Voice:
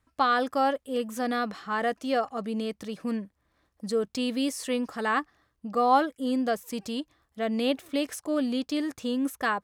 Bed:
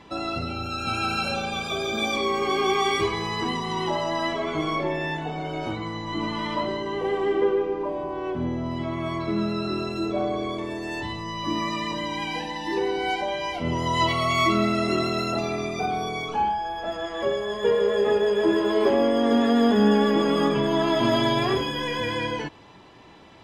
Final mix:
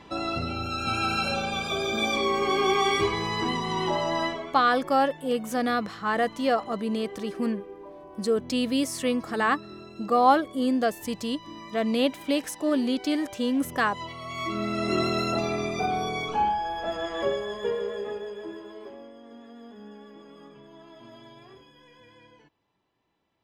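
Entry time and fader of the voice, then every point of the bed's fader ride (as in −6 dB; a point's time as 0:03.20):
4.35 s, +2.5 dB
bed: 0:04.23 −0.5 dB
0:04.60 −15.5 dB
0:14.19 −15.5 dB
0:15.00 −0.5 dB
0:17.20 −0.5 dB
0:19.22 −27 dB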